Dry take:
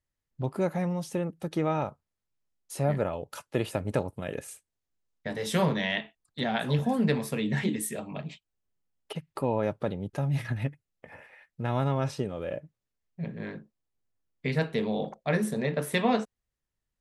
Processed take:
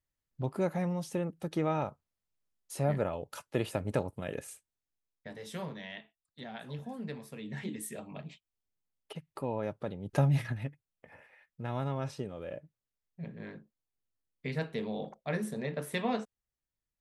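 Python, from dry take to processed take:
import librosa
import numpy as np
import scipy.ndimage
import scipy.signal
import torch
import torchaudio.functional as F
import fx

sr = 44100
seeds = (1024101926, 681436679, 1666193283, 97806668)

y = fx.gain(x, sr, db=fx.line((4.46, -3.0), (5.68, -15.0), (7.3, -15.0), (7.93, -7.0), (10.03, -7.0), (10.17, 5.0), (10.62, -7.0)))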